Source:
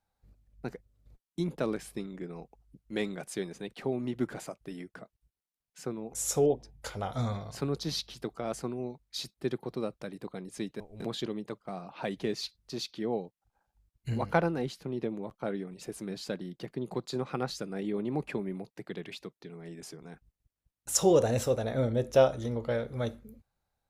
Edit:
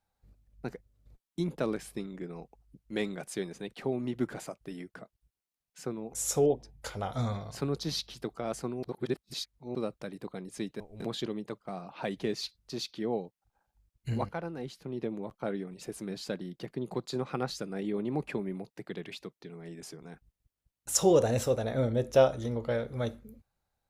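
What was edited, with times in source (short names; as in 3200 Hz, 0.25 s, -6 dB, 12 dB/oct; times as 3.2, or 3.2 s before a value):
8.83–9.75 reverse
14.29–15.19 fade in, from -14 dB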